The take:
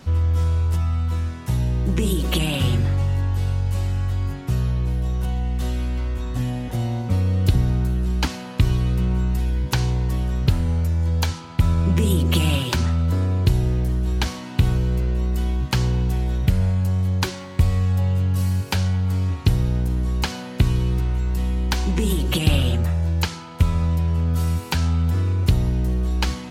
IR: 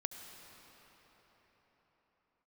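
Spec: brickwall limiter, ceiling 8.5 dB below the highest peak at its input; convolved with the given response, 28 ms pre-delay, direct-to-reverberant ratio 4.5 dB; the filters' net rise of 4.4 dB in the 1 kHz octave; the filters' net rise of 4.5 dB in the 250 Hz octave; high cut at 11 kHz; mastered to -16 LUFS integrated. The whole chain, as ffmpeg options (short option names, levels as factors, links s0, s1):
-filter_complex "[0:a]lowpass=11000,equalizer=f=250:t=o:g=6.5,equalizer=f=1000:t=o:g=5,alimiter=limit=0.282:level=0:latency=1,asplit=2[s0][s1];[1:a]atrim=start_sample=2205,adelay=28[s2];[s1][s2]afir=irnorm=-1:irlink=0,volume=0.631[s3];[s0][s3]amix=inputs=2:normalize=0,volume=2"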